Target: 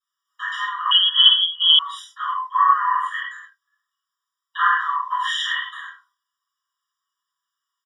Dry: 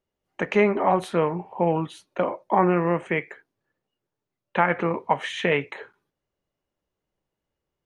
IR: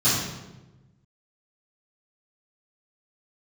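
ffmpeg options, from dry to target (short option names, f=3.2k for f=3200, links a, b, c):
-filter_complex "[0:a]highpass=210,equalizer=f=1.5k:w=6.2:g=-8.5,asplit=2[a][b];[b]adelay=32,volume=-14dB[c];[a][c]amix=inputs=2:normalize=0[d];[1:a]atrim=start_sample=2205,atrim=end_sample=6174[e];[d][e]afir=irnorm=-1:irlink=0,asettb=1/sr,asplit=3[f][g][h];[f]atrim=end=0.914[i];[g]atrim=start=0.91:end=1.79,asetpts=PTS-STARTPTS,afade=t=in:d=0.004:c=qsin,afade=t=out:st=0.876:d=0.004:c=qsin,lowpass=f=3k:t=q:w=0.5098,lowpass=f=3k:t=q:w=0.6013,lowpass=f=3k:t=q:w=0.9,lowpass=f=3k:t=q:w=2.563,afreqshift=-3500[j];[h]atrim=start=1.786[k];[i][j]acrossfade=d=0.004:c1=hsin:c2=qsin[l];[l][k]acrossfade=d=0.004:c1=qsin:c2=hsin,afftfilt=real='re*eq(mod(floor(b*sr/1024/970),2),1)':imag='im*eq(mod(floor(b*sr/1024/970),2),1)':win_size=1024:overlap=0.75,volume=-5dB"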